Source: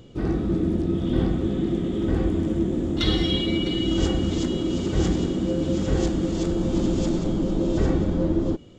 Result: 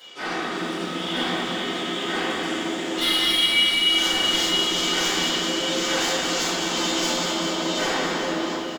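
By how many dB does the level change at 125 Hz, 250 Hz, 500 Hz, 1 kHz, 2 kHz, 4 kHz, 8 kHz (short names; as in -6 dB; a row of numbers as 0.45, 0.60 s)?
-14.0 dB, -6.5 dB, -1.5 dB, +11.0 dB, +15.0 dB, +12.5 dB, n/a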